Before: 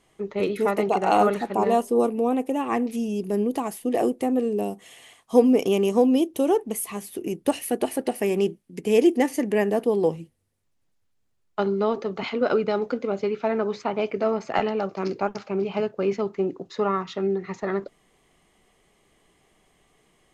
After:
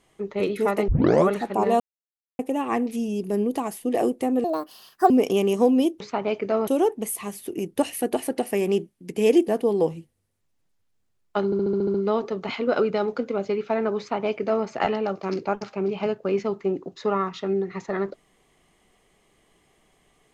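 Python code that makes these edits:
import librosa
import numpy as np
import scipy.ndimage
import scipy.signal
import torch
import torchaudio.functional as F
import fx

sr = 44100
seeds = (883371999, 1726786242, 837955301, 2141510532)

y = fx.edit(x, sr, fx.tape_start(start_s=0.88, length_s=0.41),
    fx.silence(start_s=1.8, length_s=0.59),
    fx.speed_span(start_s=4.44, length_s=1.02, speed=1.54),
    fx.cut(start_s=9.17, length_s=0.54),
    fx.stutter(start_s=11.68, slice_s=0.07, count=8),
    fx.duplicate(start_s=13.72, length_s=0.67, to_s=6.36), tone=tone)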